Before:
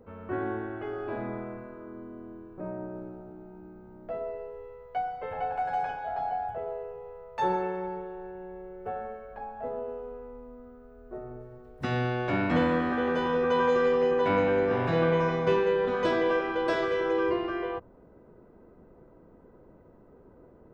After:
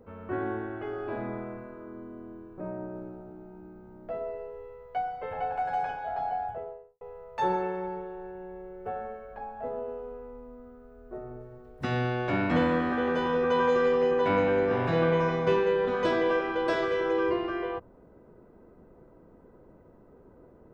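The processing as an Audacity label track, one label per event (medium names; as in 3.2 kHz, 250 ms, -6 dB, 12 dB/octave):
6.410000	7.010000	studio fade out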